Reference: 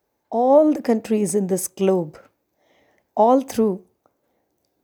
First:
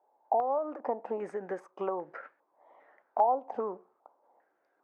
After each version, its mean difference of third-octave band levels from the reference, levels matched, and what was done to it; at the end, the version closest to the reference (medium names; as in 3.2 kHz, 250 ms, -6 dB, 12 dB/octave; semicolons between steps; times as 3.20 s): 8.0 dB: high-pass 530 Hz 12 dB/octave; compression 4:1, threshold -33 dBFS, peak gain reduction 18 dB; step-sequenced low-pass 2.5 Hz 830–1700 Hz; trim -1 dB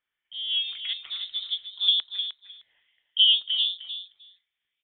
18.5 dB: LFO band-pass saw down 0.5 Hz 530–2500 Hz; feedback delay 307 ms, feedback 15%, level -9 dB; frequency inversion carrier 3.9 kHz; trim +1 dB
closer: first